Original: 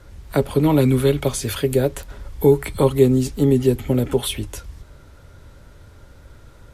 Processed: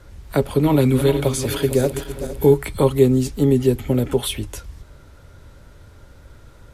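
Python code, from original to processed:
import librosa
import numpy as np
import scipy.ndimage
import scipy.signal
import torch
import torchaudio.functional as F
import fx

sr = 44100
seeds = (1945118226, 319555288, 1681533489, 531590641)

y = fx.reverse_delay_fb(x, sr, ms=229, feedback_pct=62, wet_db=-10.0, at=(0.44, 2.54))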